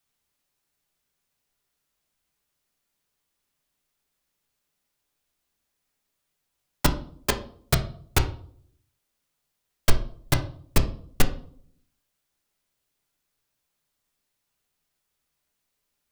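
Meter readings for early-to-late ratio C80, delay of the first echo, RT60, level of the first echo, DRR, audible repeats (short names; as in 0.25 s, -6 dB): 17.0 dB, none, 0.55 s, none, 5.0 dB, none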